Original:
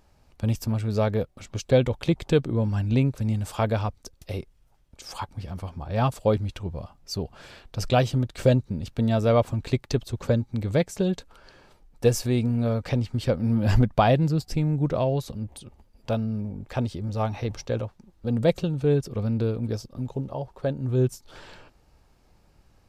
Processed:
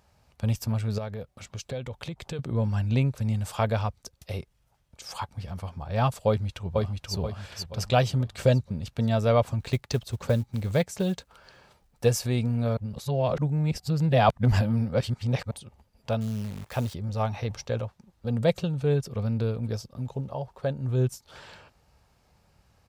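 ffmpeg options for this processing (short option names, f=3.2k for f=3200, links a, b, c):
-filter_complex "[0:a]asettb=1/sr,asplit=3[a][b][c];[a]atrim=end=0.984[d];[b]atrim=start=0.98:end=2.39,asetpts=PTS-STARTPTS,afade=t=in:d=0.004:c=qsin,afade=t=out:st=1.406:d=0.004:c=qsin,acompressor=threshold=-32dB:ratio=3:attack=3.2:release=140:knee=1:detection=peak[e];[c]atrim=start=2.386[f];[d][e]acrossfade=d=0.004:c1=hsin:c2=qsin[g];[g][f]acrossfade=d=0.004:c1=qsin:c2=hsin,asplit=2[h][i];[i]afade=t=in:st=6.27:d=0.01,afade=t=out:st=7.15:d=0.01,aecho=0:1:480|960|1440|1920|2400:0.794328|0.317731|0.127093|0.050837|0.0203348[j];[h][j]amix=inputs=2:normalize=0,asettb=1/sr,asplit=3[k][l][m];[k]atrim=end=9.604[n];[l]atrim=start=9.6:end=12.05,asetpts=PTS-STARTPTS,afade=t=in:d=0.004:c=qsin,afade=t=out:st=2.446:d=0.004:c=qsin,acrusher=bits=8:mode=log:mix=0:aa=0.000001[o];[m]atrim=start=12.046[p];[n][o]acrossfade=d=0.004:c1=hsin:c2=qsin[q];[q][p]acrossfade=d=0.004:c1=qsin:c2=hsin,asettb=1/sr,asplit=3[r][s][t];[r]atrim=end=16.214[u];[s]atrim=start=16.21:end=16.94,asetpts=PTS-STARTPTS,afade=t=in:d=0.004:c=qsin,afade=t=out:st=0.726:d=0.004:c=qsin,acrusher=bits=8:dc=4:mix=0:aa=0.000001[v];[t]atrim=start=16.936[w];[u][v]acrossfade=d=0.004:c1=hsin:c2=qsin[x];[x][w]acrossfade=d=0.004:c1=qsin:c2=hsin,asplit=3[y][z][aa];[y]atrim=end=12.772[ab];[z]atrim=start=12.768:end=15.512,asetpts=PTS-STARTPTS,areverse[ac];[aa]atrim=start=15.508[ad];[ab][ac]acrossfade=d=0.004:c1=hsin:c2=hsin[ae];[ae][ad]acrossfade=d=0.004:c1=hsin:c2=hsin,highpass=60,equalizer=f=310:t=o:w=0.76:g=-8.5"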